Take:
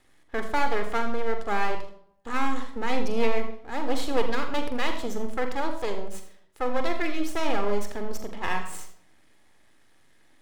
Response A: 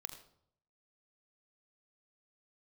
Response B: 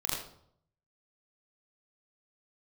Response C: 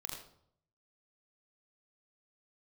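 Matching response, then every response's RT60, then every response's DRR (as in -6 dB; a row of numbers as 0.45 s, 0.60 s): A; 0.70 s, 0.65 s, 0.65 s; 6.0 dB, -6.0 dB, -1.5 dB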